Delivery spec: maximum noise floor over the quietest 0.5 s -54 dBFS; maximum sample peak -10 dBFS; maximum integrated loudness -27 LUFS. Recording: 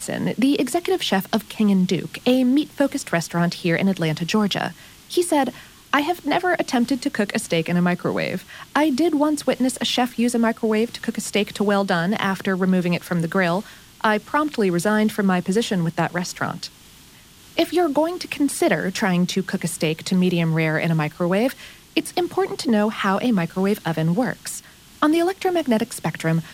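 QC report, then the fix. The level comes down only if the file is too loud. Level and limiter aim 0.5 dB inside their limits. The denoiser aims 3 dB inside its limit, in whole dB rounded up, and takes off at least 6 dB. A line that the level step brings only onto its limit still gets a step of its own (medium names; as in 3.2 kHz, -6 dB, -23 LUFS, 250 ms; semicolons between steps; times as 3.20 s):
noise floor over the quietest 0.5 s -47 dBFS: fail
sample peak -5.0 dBFS: fail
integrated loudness -21.5 LUFS: fail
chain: noise reduction 6 dB, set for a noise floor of -47 dBFS; trim -6 dB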